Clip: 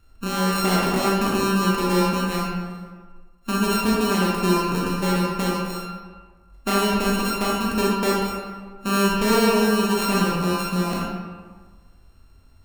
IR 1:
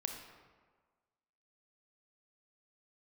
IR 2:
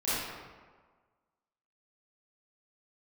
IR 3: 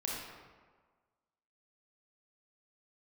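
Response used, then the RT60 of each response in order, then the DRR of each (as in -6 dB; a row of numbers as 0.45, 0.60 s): 3; 1.5, 1.5, 1.5 s; 3.5, -13.5, -4.0 dB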